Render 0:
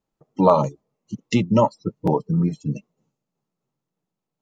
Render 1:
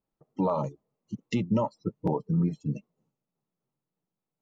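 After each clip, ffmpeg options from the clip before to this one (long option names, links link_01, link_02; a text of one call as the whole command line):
ffmpeg -i in.wav -af "highshelf=frequency=3600:gain=-8.5,alimiter=limit=-12dB:level=0:latency=1:release=127,volume=-5dB" out.wav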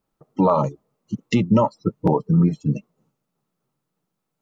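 ffmpeg -i in.wav -af "equalizer=frequency=1300:width_type=o:width=0.49:gain=5,volume=9dB" out.wav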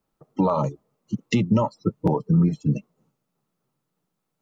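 ffmpeg -i in.wav -filter_complex "[0:a]acrossover=split=140|3000[link_01][link_02][link_03];[link_02]acompressor=threshold=-18dB:ratio=6[link_04];[link_01][link_04][link_03]amix=inputs=3:normalize=0" out.wav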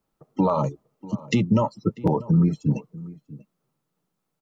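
ffmpeg -i in.wav -filter_complex "[0:a]asplit=2[link_01][link_02];[link_02]adelay=641.4,volume=-19dB,highshelf=frequency=4000:gain=-14.4[link_03];[link_01][link_03]amix=inputs=2:normalize=0" out.wav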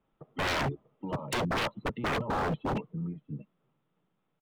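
ffmpeg -i in.wav -af "aresample=8000,aresample=44100,aeval=exprs='0.0501*(abs(mod(val(0)/0.0501+3,4)-2)-1)':channel_layout=same,volume=1.5dB" out.wav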